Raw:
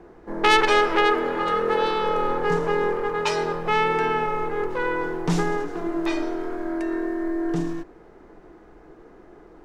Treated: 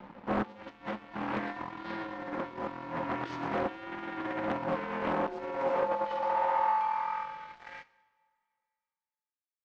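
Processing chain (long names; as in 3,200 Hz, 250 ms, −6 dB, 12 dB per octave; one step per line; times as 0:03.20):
compressor whose output falls as the input rises −28 dBFS, ratio −0.5
ring modulation 540 Hz
soft clipping −22 dBFS, distortion −16 dB
high-pass filter sweep 230 Hz → 3,700 Hz, 0:04.85–0:08.68
dead-zone distortion −46.5 dBFS
high-frequency loss of the air 180 metres
on a send at −15.5 dB: convolution reverb, pre-delay 3 ms
on the sum: highs frequency-modulated by the lows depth 0.71 ms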